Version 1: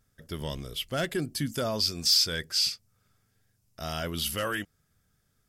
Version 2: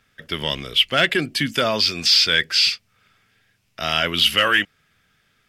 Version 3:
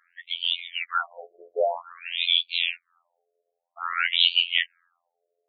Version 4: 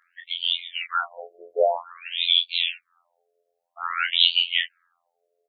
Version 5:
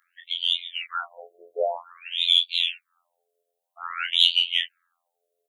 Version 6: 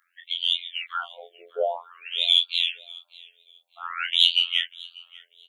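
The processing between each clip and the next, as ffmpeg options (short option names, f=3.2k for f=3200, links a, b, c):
-filter_complex "[0:a]equalizer=f=2.6k:t=o:w=1.7:g=14.5,acrossover=split=160|4000[a][b][c];[b]acontrast=87[d];[c]alimiter=limit=-17.5dB:level=0:latency=1[e];[a][d][e]amix=inputs=3:normalize=0"
-af "afftfilt=real='hypot(re,im)*cos(PI*b)':imag='0':win_size=2048:overlap=0.75,alimiter=limit=-3.5dB:level=0:latency=1:release=277,afftfilt=real='re*between(b*sr/1024,500*pow(3300/500,0.5+0.5*sin(2*PI*0.51*pts/sr))/1.41,500*pow(3300/500,0.5+0.5*sin(2*PI*0.51*pts/sr))*1.41)':imag='im*between(b*sr/1024,500*pow(3300/500,0.5+0.5*sin(2*PI*0.51*pts/sr))/1.41,500*pow(3300/500,0.5+0.5*sin(2*PI*0.51*pts/sr))*1.41)':win_size=1024:overlap=0.75,volume=4dB"
-filter_complex "[0:a]asplit=2[a][b];[b]adelay=23,volume=-5dB[c];[a][c]amix=inputs=2:normalize=0,volume=1dB"
-af "aexciter=amount=2:drive=5.4:freq=2.9k,volume=-5dB"
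-af "aecho=1:1:592|1184:0.0708|0.0163"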